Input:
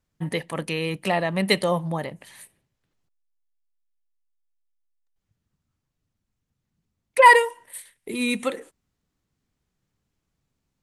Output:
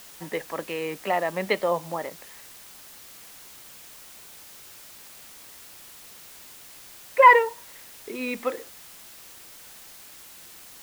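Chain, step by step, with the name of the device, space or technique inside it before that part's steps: wax cylinder (band-pass 350–2000 Hz; wow and flutter; white noise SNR 18 dB)

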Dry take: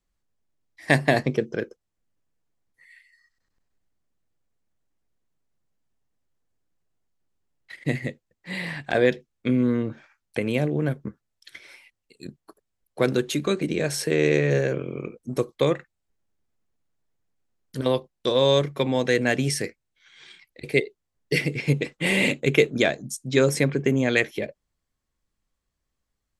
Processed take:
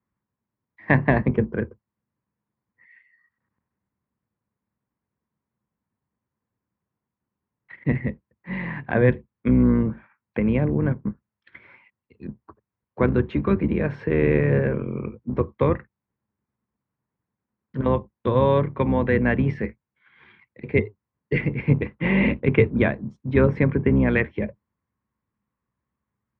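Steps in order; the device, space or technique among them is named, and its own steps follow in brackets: sub-octave bass pedal (octave divider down 2 oct, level 0 dB; cabinet simulation 67–2200 Hz, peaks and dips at 120 Hz +5 dB, 210 Hz +9 dB, 670 Hz -4 dB, 1 kHz +8 dB)

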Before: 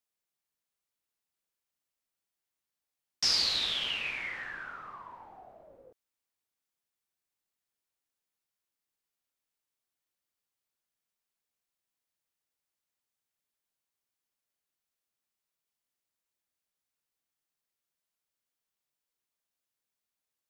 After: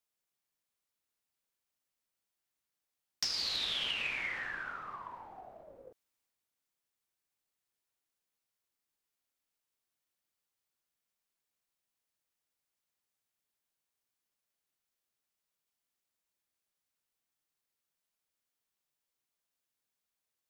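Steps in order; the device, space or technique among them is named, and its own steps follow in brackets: drum-bus smash (transient shaper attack +7 dB, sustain +3 dB; compression 12:1, threshold -30 dBFS, peak gain reduction 12 dB; saturation -22 dBFS, distortion -22 dB)

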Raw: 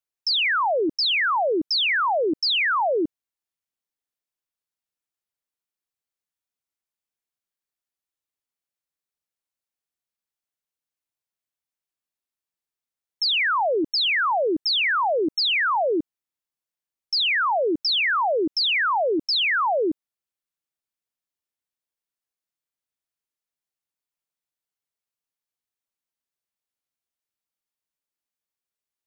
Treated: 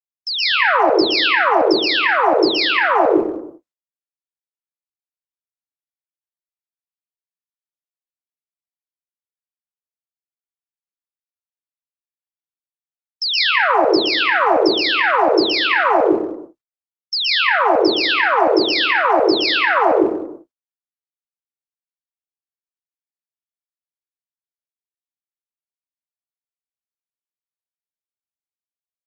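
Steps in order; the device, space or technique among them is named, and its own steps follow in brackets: speakerphone in a meeting room (reverberation RT60 0.80 s, pre-delay 116 ms, DRR -6.5 dB; speakerphone echo 200 ms, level -21 dB; level rider gain up to 7.5 dB; gate -34 dBFS, range -55 dB; trim -1 dB; Opus 32 kbps 48 kHz)

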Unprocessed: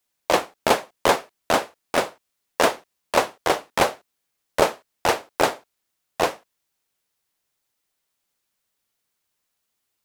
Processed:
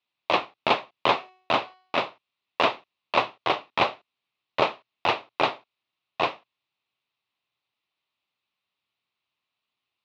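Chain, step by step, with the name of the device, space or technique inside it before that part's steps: 1.07–2.01 s: de-hum 371.5 Hz, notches 34; guitar cabinet (cabinet simulation 78–4000 Hz, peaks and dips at 120 Hz +7 dB, 490 Hz -5 dB, 1.1 kHz +5 dB, 1.6 kHz -7 dB, 2.6 kHz +7 dB, 3.8 kHz +5 dB); bass shelf 250 Hz -5 dB; trim -3 dB

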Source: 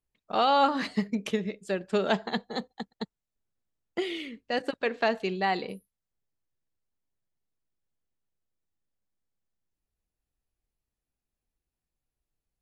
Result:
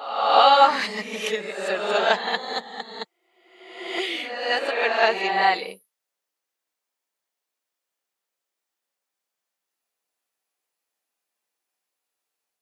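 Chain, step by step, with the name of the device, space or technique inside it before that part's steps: ghost voice (reverse; reverberation RT60 1.1 s, pre-delay 8 ms, DRR -0.5 dB; reverse; high-pass 640 Hz 12 dB/octave); trim +7 dB

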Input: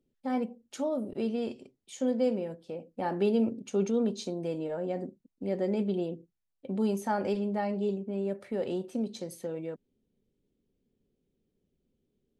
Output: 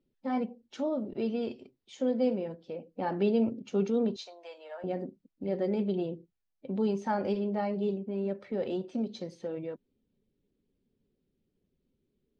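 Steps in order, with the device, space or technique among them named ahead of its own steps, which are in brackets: 4.16–4.84 s: high-pass 700 Hz 24 dB/octave; clip after many re-uploads (low-pass 5.4 kHz 24 dB/octave; coarse spectral quantiser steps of 15 dB)

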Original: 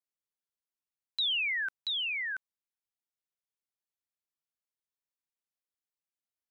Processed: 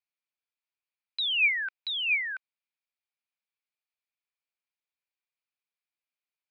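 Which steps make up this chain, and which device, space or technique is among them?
musical greeting card (resampled via 11.025 kHz; high-pass 580 Hz; peaking EQ 2.4 kHz +11 dB 0.26 oct)

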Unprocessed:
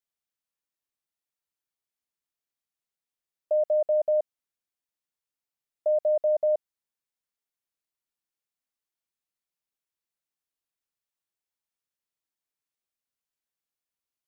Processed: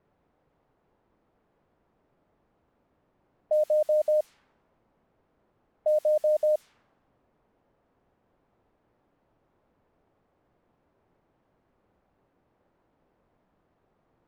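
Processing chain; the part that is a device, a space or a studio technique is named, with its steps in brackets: cassette deck with a dynamic noise filter (white noise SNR 23 dB; level-controlled noise filter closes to 640 Hz, open at -22 dBFS)

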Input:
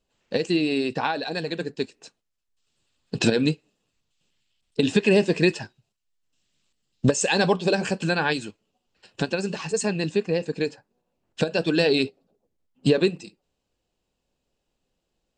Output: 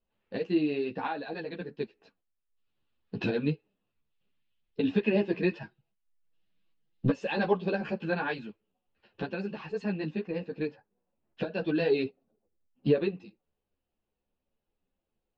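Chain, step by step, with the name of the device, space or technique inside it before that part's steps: string-machine ensemble chorus (three-phase chorus; low-pass 4.2 kHz 12 dB/octave); 5.60–7.14 s: comb 6.2 ms, depth 62%; distance through air 240 m; trim -3.5 dB

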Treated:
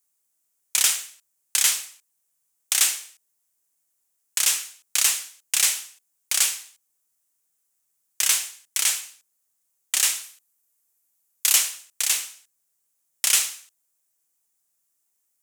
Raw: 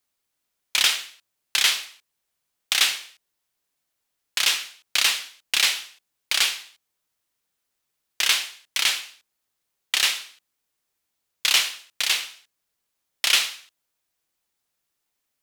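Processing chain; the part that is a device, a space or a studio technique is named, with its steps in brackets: budget condenser microphone (high-pass 69 Hz; resonant high shelf 5.5 kHz +10.5 dB, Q 1.5); 10.23–11.56 s: peaking EQ 13 kHz +5.5 dB 0.48 oct; trim -4.5 dB

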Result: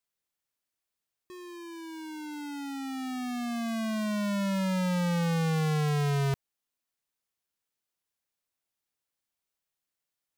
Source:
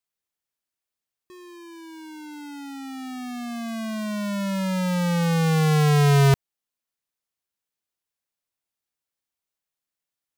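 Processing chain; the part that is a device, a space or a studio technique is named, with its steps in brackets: saturation between pre-emphasis and de-emphasis (treble shelf 12 kHz +9.5 dB; saturation -26.5 dBFS, distortion -8 dB; treble shelf 12 kHz -9.5 dB)

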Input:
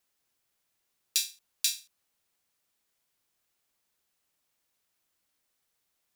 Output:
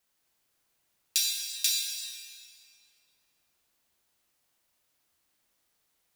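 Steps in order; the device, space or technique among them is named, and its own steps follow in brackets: stairwell (reverberation RT60 2.7 s, pre-delay 13 ms, DRR -2 dB)

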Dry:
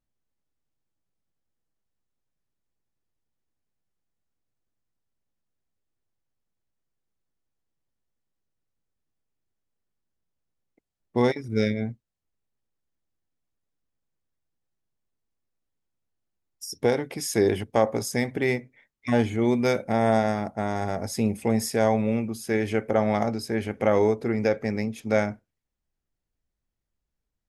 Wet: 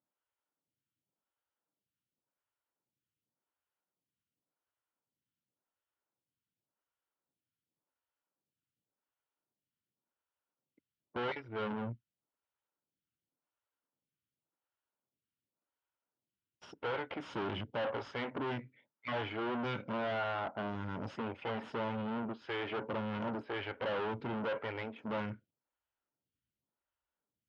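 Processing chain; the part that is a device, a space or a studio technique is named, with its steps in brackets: vibe pedal into a guitar amplifier (lamp-driven phase shifter 0.9 Hz; valve stage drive 37 dB, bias 0.7; cabinet simulation 98–3700 Hz, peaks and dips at 120 Hz +3 dB, 290 Hz +3 dB, 570 Hz +4 dB, 940 Hz +8 dB, 1.4 kHz +9 dB, 3 kHz +7 dB)

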